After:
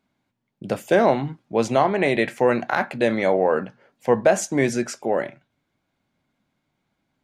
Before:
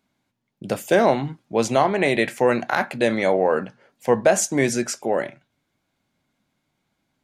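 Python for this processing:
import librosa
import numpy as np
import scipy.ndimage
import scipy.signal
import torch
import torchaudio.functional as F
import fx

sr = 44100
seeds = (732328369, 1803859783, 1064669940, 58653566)

y = fx.high_shelf(x, sr, hz=4800.0, db=-8.5)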